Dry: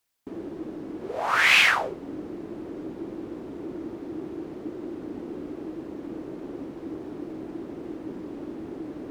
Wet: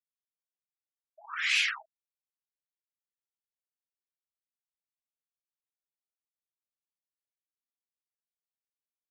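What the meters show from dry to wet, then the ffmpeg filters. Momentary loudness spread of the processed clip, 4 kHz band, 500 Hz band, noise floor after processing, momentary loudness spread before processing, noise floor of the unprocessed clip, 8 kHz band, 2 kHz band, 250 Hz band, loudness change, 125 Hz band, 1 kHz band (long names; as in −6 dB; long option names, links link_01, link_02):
16 LU, −7.0 dB, below −35 dB, below −85 dBFS, 17 LU, −41 dBFS, −6.0 dB, −10.5 dB, below −40 dB, +1.0 dB, below −40 dB, −18.0 dB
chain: -af "aderivative,afftfilt=real='re*gte(hypot(re,im),0.0282)':imag='im*gte(hypot(re,im),0.0282)':win_size=1024:overlap=0.75"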